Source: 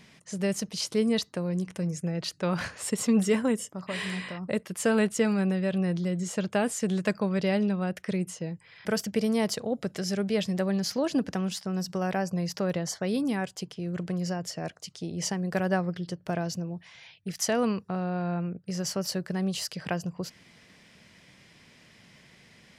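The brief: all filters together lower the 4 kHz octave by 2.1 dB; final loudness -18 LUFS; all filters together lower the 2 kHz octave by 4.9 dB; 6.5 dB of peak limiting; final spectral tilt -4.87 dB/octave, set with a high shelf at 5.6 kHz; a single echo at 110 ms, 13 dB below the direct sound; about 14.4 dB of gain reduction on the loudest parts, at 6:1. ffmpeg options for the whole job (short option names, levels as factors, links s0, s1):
-af "equalizer=f=2000:t=o:g=-6,equalizer=f=4000:t=o:g=-4.5,highshelf=f=5600:g=6,acompressor=threshold=0.0158:ratio=6,alimiter=level_in=2.11:limit=0.0631:level=0:latency=1,volume=0.473,aecho=1:1:110:0.224,volume=12.6"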